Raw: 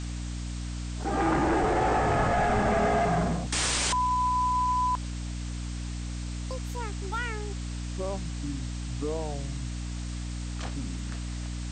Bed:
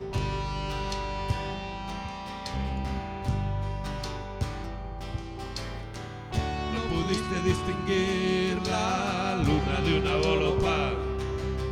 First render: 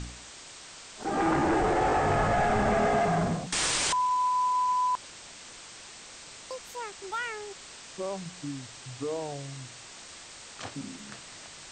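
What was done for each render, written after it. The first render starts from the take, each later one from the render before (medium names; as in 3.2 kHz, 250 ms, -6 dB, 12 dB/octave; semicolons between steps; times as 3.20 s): de-hum 60 Hz, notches 5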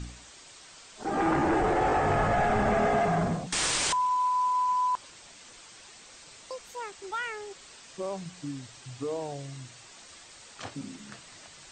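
noise reduction 6 dB, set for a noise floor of -47 dBFS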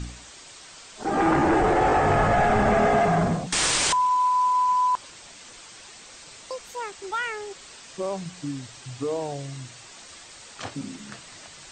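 trim +5 dB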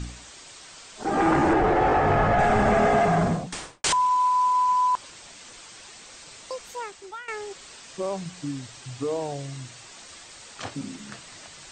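1.53–2.39 s: distance through air 110 m; 3.28–3.84 s: studio fade out; 6.72–7.28 s: fade out, to -16.5 dB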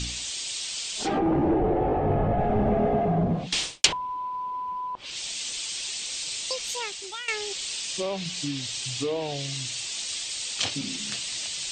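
low-pass that closes with the level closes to 630 Hz, closed at -19 dBFS; resonant high shelf 2.1 kHz +12.5 dB, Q 1.5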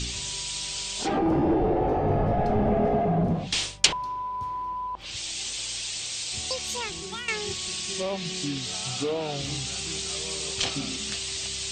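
add bed -14.5 dB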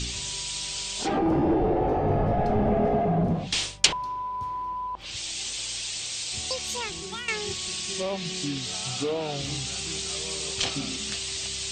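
no audible change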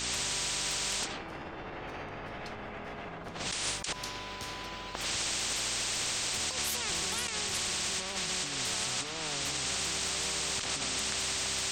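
compressor with a negative ratio -35 dBFS, ratio -1; spectrum-flattening compressor 4:1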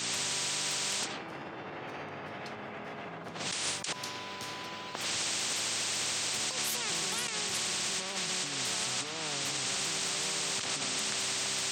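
high-pass 110 Hz 24 dB/octave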